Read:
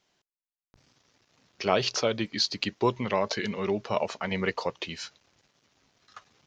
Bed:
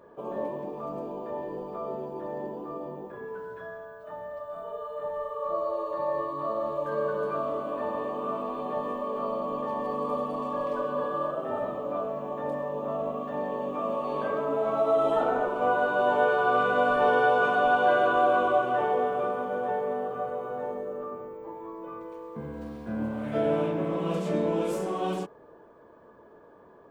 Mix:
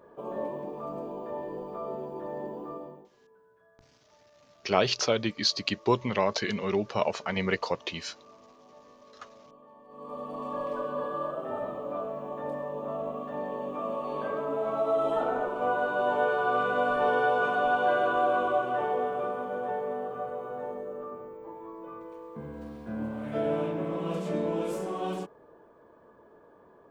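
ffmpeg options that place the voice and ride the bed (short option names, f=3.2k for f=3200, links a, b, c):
-filter_complex "[0:a]adelay=3050,volume=0.5dB[a];[1:a]volume=18.5dB,afade=t=out:st=2.69:d=0.41:silence=0.0841395,afade=t=in:st=9.88:d=0.65:silence=0.1[b];[a][b]amix=inputs=2:normalize=0"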